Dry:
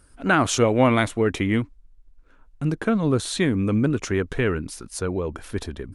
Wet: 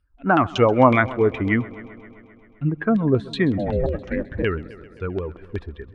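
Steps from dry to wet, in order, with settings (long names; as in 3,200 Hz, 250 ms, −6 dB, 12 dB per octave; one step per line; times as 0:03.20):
spectral dynamics exaggerated over time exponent 1.5
auto-filter low-pass saw down 5.4 Hz 580–3,400 Hz
0:03.57–0:04.42: ring modulation 450 Hz → 76 Hz
on a send: echo machine with several playback heads 131 ms, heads first and second, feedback 60%, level −22 dB
on the sum: level +3 dB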